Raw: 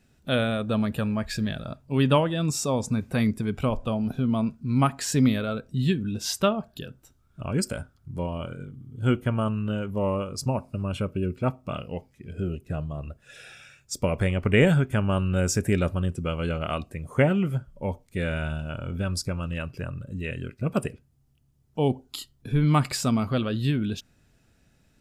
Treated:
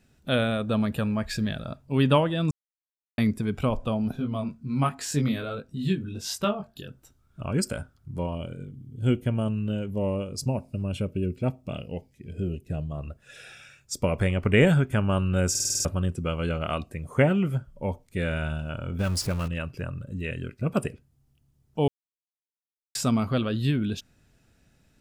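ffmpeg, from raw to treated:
ffmpeg -i in.wav -filter_complex "[0:a]asplit=3[link_01][link_02][link_03];[link_01]afade=type=out:start_time=4.16:duration=0.02[link_04];[link_02]flanger=delay=19:depth=3.2:speed=1.4,afade=type=in:start_time=4.16:duration=0.02,afade=type=out:start_time=6.87:duration=0.02[link_05];[link_03]afade=type=in:start_time=6.87:duration=0.02[link_06];[link_04][link_05][link_06]amix=inputs=3:normalize=0,asettb=1/sr,asplit=3[link_07][link_08][link_09];[link_07]atrim=end=8.354[link_10];[link_08]atrim=start=8.35:end=12.92,asetpts=PTS-STARTPTS,afade=type=in:duration=0.004:curve=qsin,afade=type=out:start_time=4.566:duration=0.004:curve=qsin,equalizer=frequency=1200:width_type=o:width=0.98:gain=-11.5[link_11];[link_09]atrim=start=12.916[link_12];[link_10][link_11]acrossfade=duration=0.004:curve1=hsin:curve2=qsin[link_13];[link_13][link_12]acrossfade=duration=0.004:curve1=qsin:curve2=hsin,asettb=1/sr,asplit=3[link_14][link_15][link_16];[link_14]atrim=end=18.994[link_17];[link_15]atrim=start=18.99:end=19.48,asetpts=PTS-STARTPTS,afade=type=in:duration=0.004:curve=qsin,afade=type=out:start_time=0.486:duration=0.004:curve=qsin,aeval=exprs='val(0)+0.5*0.0224*sgn(val(0))':channel_layout=same[link_18];[link_16]atrim=start=19.476[link_19];[link_17][link_18]acrossfade=duration=0.004:curve1=hsin:curve2=qsin[link_20];[link_20][link_19]acrossfade=duration=0.004:curve1=qsin:curve2=hsin,asplit=12[link_21][link_22][link_23][link_24][link_25][link_26][link_27][link_28][link_29][link_30][link_31][link_32];[link_21]atrim=end=2.51,asetpts=PTS-STARTPTS,afade=type=out:start_time=2.506:duration=0.004:curve=hsin[link_33];[link_22]atrim=start=2.51:end=3.18,asetpts=PTS-STARTPTS,volume=0[link_34];[link_23]atrim=start=3.18:end=15.552,asetpts=PTS-STARTPTS,afade=type=in:duration=0.004:curve=hsin[link_35];[link_24]atrim=start=15.498:end=15.552[link_36];[link_25]atrim=start=15.498:end=15.552[link_37];[link_26]atrim=start=15.498:end=15.552[link_38];[link_27]atrim=start=15.498:end=15.552[link_39];[link_28]atrim=start=15.498:end=15.552[link_40];[link_29]atrim=start=15.498:end=15.552[link_41];[link_30]atrim=start=15.848:end=21.88,asetpts=PTS-STARTPTS,afade=type=out:start_time=6.028:duration=0.004:curve=hsin[link_42];[link_31]atrim=start=21.88:end=22.95,asetpts=PTS-STARTPTS,volume=0[link_43];[link_32]atrim=start=22.95,asetpts=PTS-STARTPTS,afade=type=in:duration=0.004:curve=hsin[link_44];[link_33][link_34][link_35]concat=n=3:v=0:a=1[link_45];[link_45][link_36]acrossfade=duration=0.004:curve1=hsin:curve2=hsin[link_46];[link_46][link_37]acrossfade=duration=0.004:curve1=hsin:curve2=hsin[link_47];[link_47][link_38]acrossfade=duration=0.004:curve1=hsin:curve2=hsin[link_48];[link_48][link_39]acrossfade=duration=0.004:curve1=hsin:curve2=hsin[link_49];[link_49][link_40]acrossfade=duration=0.004:curve1=hsin:curve2=hsin[link_50];[link_50][link_41]acrossfade=duration=0.004:curve1=hsin:curve2=hsin[link_51];[link_42][link_43][link_44]concat=n=3:v=0:a=1[link_52];[link_51][link_52]acrossfade=duration=0.004:curve1=hsin:curve2=hsin" out.wav

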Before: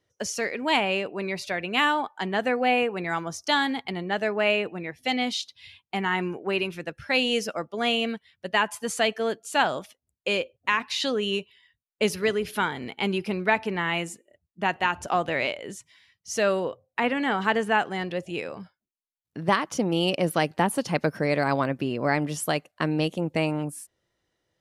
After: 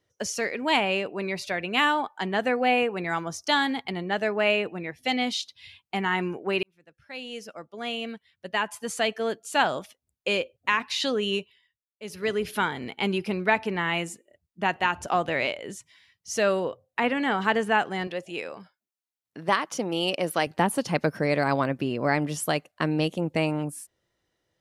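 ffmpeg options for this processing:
ffmpeg -i in.wav -filter_complex "[0:a]asettb=1/sr,asplit=3[link_01][link_02][link_03];[link_01]atrim=end=18.074[link_04];[link_02]atrim=start=18.07:end=20.47,asetpts=PTS-STARTPTS,afade=type=in:duration=0.004:curve=qsin,afade=type=out:start_time=2.396:duration=0.004:curve=qsin,highpass=frequency=380:poles=1[link_05];[link_03]atrim=start=20.466[link_06];[link_04][link_05]acrossfade=duration=0.004:curve1=hsin:curve2=qsin[link_07];[link_07][link_06]acrossfade=duration=0.004:curve1=qsin:curve2=hsin,asplit=4[link_08][link_09][link_10][link_11];[link_08]atrim=end=6.63,asetpts=PTS-STARTPTS,afade=type=out:start_time=6.626:duration=0.004:curve=hsin[link_12];[link_09]atrim=start=6.63:end=11.78,asetpts=PTS-STARTPTS,afade=type=in:duration=3.01,afade=type=out:start_time=4.76:duration=0.39:silence=0.0841395[link_13];[link_10]atrim=start=11.78:end=12.01,asetpts=PTS-STARTPTS,volume=-21.5dB[link_14];[link_11]atrim=start=12.01,asetpts=PTS-STARTPTS,afade=type=in:duration=0.39:silence=0.0841395[link_15];[link_12][link_13][link_14][link_15]concat=n=4:v=0:a=1" out.wav

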